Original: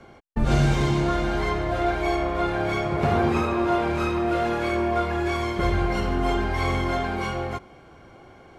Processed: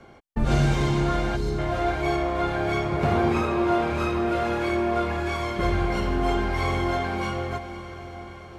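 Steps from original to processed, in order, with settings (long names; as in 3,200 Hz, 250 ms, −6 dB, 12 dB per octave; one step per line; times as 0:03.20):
gain on a spectral selection 0:01.36–0:01.59, 520–3,700 Hz −25 dB
feedback delay with all-pass diffusion 504 ms, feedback 64%, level −12.5 dB
level −1 dB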